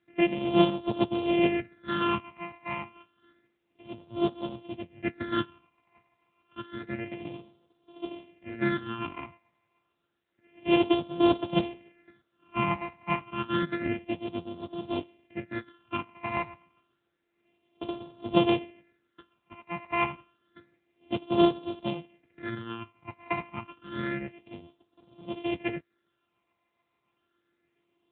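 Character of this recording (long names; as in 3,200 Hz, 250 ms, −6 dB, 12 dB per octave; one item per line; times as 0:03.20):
a buzz of ramps at a fixed pitch in blocks of 128 samples
phaser sweep stages 8, 0.29 Hz, lowest notch 450–1,900 Hz
tremolo triangle 7.1 Hz, depth 40%
AMR narrowband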